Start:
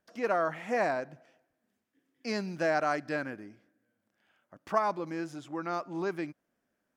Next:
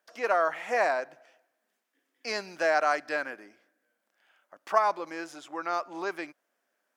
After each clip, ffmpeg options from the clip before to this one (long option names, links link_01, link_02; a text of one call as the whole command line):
ffmpeg -i in.wav -af "highpass=550,volume=5dB" out.wav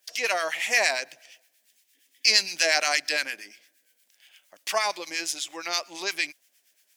ffmpeg -i in.wav -filter_complex "[0:a]aexciter=amount=10.3:drive=4.4:freq=2000,acrossover=split=1100[link_01][link_02];[link_01]aeval=exprs='val(0)*(1-0.7/2+0.7/2*cos(2*PI*8.6*n/s))':channel_layout=same[link_03];[link_02]aeval=exprs='val(0)*(1-0.7/2-0.7/2*cos(2*PI*8.6*n/s))':channel_layout=same[link_04];[link_03][link_04]amix=inputs=2:normalize=0" out.wav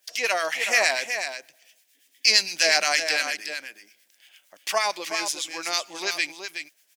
ffmpeg -i in.wav -af "aecho=1:1:371:0.398,volume=1.5dB" out.wav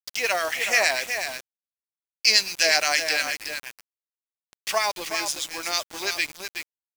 ffmpeg -i in.wav -af "acrusher=bits=5:mix=0:aa=0.000001" out.wav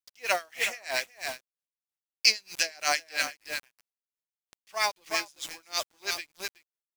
ffmpeg -i in.wav -af "aeval=exprs='val(0)*pow(10,-31*(0.5-0.5*cos(2*PI*3.1*n/s))/20)':channel_layout=same" out.wav